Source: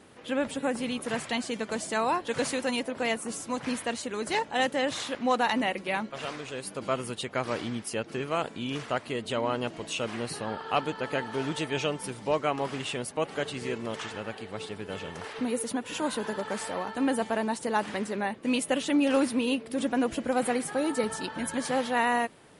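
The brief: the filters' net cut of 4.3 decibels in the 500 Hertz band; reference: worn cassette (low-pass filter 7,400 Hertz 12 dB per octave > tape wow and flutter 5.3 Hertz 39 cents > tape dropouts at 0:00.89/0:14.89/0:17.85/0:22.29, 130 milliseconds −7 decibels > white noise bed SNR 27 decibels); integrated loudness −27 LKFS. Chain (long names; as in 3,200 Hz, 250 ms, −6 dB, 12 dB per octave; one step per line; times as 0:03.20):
low-pass filter 7,400 Hz 12 dB per octave
parametric band 500 Hz −5 dB
tape wow and flutter 5.3 Hz 39 cents
tape dropouts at 0:00.89/0:14.89/0:17.85/0:22.29, 130 ms −7 dB
white noise bed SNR 27 dB
level +5 dB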